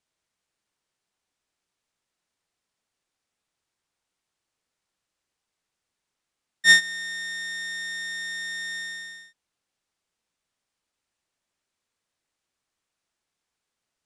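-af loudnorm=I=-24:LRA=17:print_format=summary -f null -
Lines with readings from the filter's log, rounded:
Input Integrated:    -24.0 LUFS
Input True Peak:      -6.1 dBTP
Input LRA:            10.8 LU
Input Threshold:     -34.6 LUFS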